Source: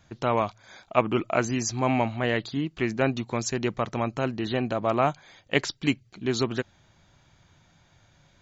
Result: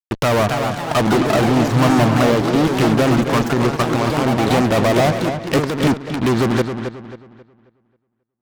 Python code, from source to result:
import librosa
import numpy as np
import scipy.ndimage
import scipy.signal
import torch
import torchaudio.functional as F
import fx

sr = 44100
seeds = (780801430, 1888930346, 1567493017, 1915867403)

p1 = fx.env_lowpass_down(x, sr, base_hz=680.0, full_db=-21.0)
p2 = fx.peak_eq(p1, sr, hz=1200.0, db=5.0, octaves=0.38)
p3 = fx.level_steps(p2, sr, step_db=12, at=(3.48, 4.51))
p4 = fx.fuzz(p3, sr, gain_db=37.0, gate_db=-41.0)
p5 = p4 + fx.echo_filtered(p4, sr, ms=269, feedback_pct=34, hz=4800.0, wet_db=-8, dry=0)
y = fx.echo_pitch(p5, sr, ms=309, semitones=3, count=3, db_per_echo=-6.0)